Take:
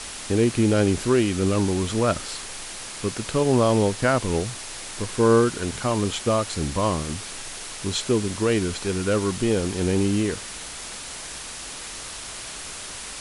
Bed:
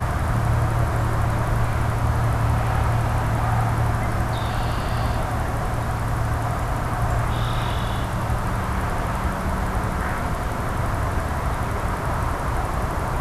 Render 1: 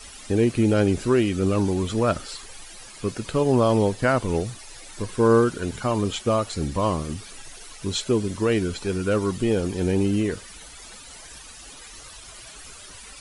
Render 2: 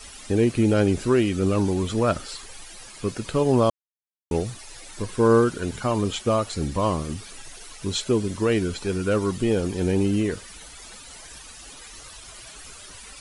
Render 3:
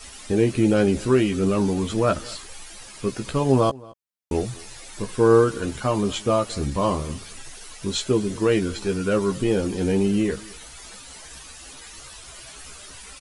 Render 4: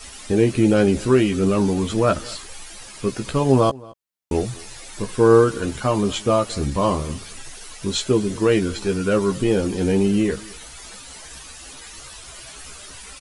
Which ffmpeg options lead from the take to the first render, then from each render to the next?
-af "afftdn=nr=13:nf=-36"
-filter_complex "[0:a]asplit=3[s0][s1][s2];[s0]atrim=end=3.7,asetpts=PTS-STARTPTS,afade=t=out:st=3.696:d=0.004:c=hsin[s3];[s1]atrim=start=3.7:end=4.31,asetpts=PTS-STARTPTS,volume=0[s4];[s2]atrim=start=4.31,asetpts=PTS-STARTPTS,afade=t=in:d=0.004:c=hsin[s5];[s3][s4][s5]concat=n=3:v=0:a=1"
-filter_complex "[0:a]asplit=2[s0][s1];[s1]adelay=15,volume=0.501[s2];[s0][s2]amix=inputs=2:normalize=0,asplit=2[s3][s4];[s4]adelay=221.6,volume=0.0708,highshelf=f=4000:g=-4.99[s5];[s3][s5]amix=inputs=2:normalize=0"
-af "volume=1.33"

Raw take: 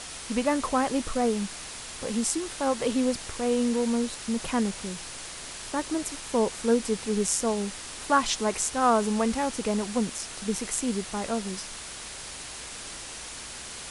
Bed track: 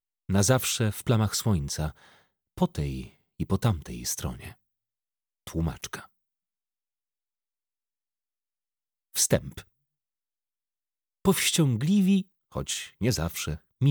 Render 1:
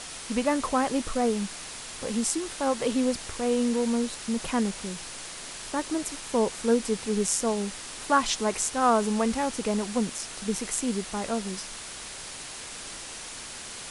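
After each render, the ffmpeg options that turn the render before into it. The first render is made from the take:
-af "bandreject=f=60:t=h:w=4,bandreject=f=120:t=h:w=4"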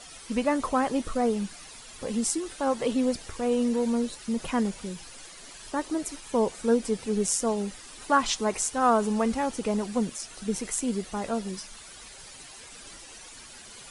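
-af "afftdn=nr=11:nf=-40"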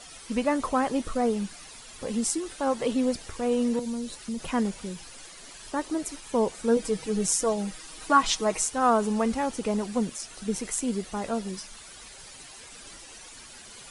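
-filter_complex "[0:a]asettb=1/sr,asplit=3[s0][s1][s2];[s0]atrim=end=3.794[s3];[s1]atrim=start=3.79:end=4.5,asetpts=PTS-STARTPTS,afade=t=in:d=0.004:c=qsin,afade=t=out:st=0.706:d=0.004:c=qsin,acrossover=split=190|3000[s4][s5][s6];[s5]acompressor=threshold=0.02:ratio=6:attack=3.2:release=140:knee=2.83:detection=peak[s7];[s4][s7][s6]amix=inputs=3:normalize=0[s8];[s2]atrim=start=4.496[s9];[s3][s8]acrossfade=d=0.004:c1=hsin:c2=qsin[s10];[s10][s9]acrossfade=d=0.004:c1=qsin:c2=hsin,asettb=1/sr,asplit=3[s11][s12][s13];[s11]atrim=end=6.764[s14];[s12]atrim=start=6.76:end=8.65,asetpts=PTS-STARTPTS,afade=t=in:d=0.004:c=qsin,afade=t=out:st=1.886:d=0.004:c=qsin,aecho=1:1:6.3:0.65,atrim=end_sample=83349[s15];[s13]atrim=start=8.646[s16];[s14][s15]acrossfade=d=0.004:c1=hsin:c2=qsin[s17];[s17][s16]acrossfade=d=0.004:c1=qsin:c2=hsin"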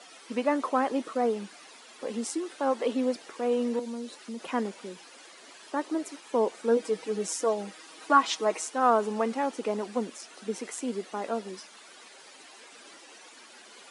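-af "highpass=f=260:w=0.5412,highpass=f=260:w=1.3066,aemphasis=mode=reproduction:type=50kf"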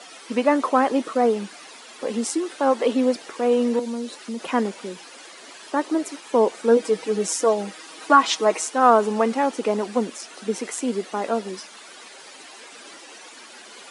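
-af "volume=2.37,alimiter=limit=0.794:level=0:latency=1"

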